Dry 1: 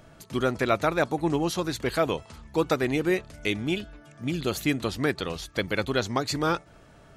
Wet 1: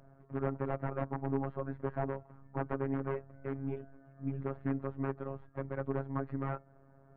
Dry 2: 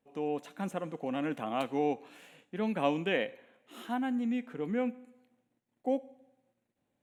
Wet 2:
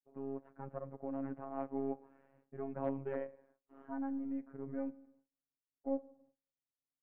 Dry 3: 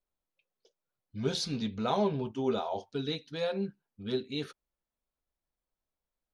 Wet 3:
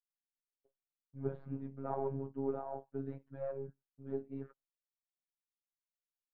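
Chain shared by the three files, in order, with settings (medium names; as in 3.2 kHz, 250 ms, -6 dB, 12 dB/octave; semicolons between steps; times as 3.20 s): partial rectifier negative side -3 dB; gate with hold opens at -53 dBFS; integer overflow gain 17.5 dB; Bessel low-pass 1 kHz, order 6; robot voice 136 Hz; trim -3.5 dB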